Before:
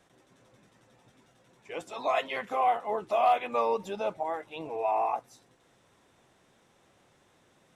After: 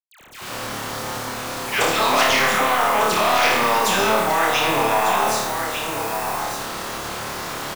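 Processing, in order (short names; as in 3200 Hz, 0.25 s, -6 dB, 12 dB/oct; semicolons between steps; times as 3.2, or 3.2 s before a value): tracing distortion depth 0.076 ms; bell 1200 Hz +14.5 dB 1.4 oct; low-pass opened by the level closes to 1100 Hz, open at -25 dBFS; limiter -24.5 dBFS, peak gain reduction 19.5 dB; echo 1.198 s -13.5 dB; AGC gain up to 13 dB; requantised 8-bit, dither none; dispersion lows, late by 0.1 s, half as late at 1300 Hz; on a send: flutter echo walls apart 4.7 m, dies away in 0.52 s; on the sum: spectral compressor 2:1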